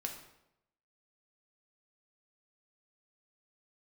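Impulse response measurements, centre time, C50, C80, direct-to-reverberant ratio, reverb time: 24 ms, 7.0 dB, 9.5 dB, 2.0 dB, 0.85 s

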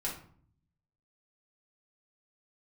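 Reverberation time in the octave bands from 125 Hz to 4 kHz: 1.1, 0.90, 0.55, 0.55, 0.40, 0.35 s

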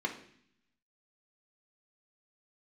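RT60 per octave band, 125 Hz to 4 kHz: 1.1, 1.0, 0.65, 0.60, 0.75, 0.80 s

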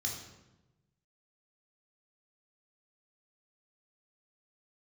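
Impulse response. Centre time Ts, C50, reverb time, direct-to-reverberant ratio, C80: 40 ms, 4.0 dB, 1.0 s, -1.5 dB, 7.0 dB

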